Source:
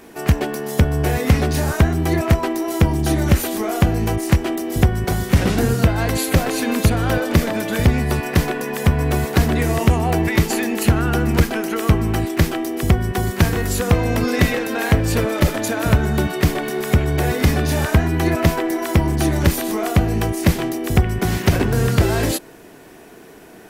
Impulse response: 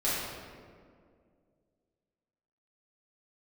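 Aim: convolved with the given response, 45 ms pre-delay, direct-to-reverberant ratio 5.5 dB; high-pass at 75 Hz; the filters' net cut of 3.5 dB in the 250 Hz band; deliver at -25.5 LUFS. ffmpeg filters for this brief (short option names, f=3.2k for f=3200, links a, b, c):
-filter_complex "[0:a]highpass=75,equalizer=f=250:t=o:g=-5,asplit=2[a][b];[1:a]atrim=start_sample=2205,adelay=45[c];[b][c]afir=irnorm=-1:irlink=0,volume=-15.5dB[d];[a][d]amix=inputs=2:normalize=0,volume=-5.5dB"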